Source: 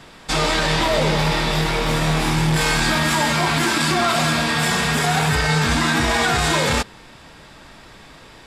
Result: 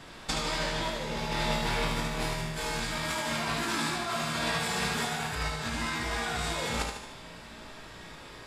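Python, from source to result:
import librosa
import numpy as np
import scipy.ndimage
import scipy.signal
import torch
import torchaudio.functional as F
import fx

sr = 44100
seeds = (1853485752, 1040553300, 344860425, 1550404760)

y = fx.over_compress(x, sr, threshold_db=-22.0, ratio=-0.5)
y = fx.comb_fb(y, sr, f0_hz=57.0, decay_s=0.73, harmonics='all', damping=0.0, mix_pct=80)
y = fx.echo_feedback(y, sr, ms=75, feedback_pct=54, wet_db=-6.0)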